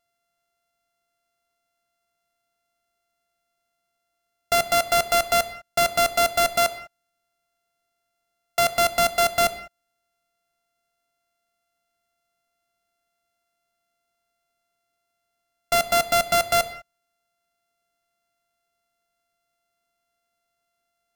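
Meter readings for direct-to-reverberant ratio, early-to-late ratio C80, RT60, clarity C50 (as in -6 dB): 11.0 dB, 14.5 dB, not exponential, 13.0 dB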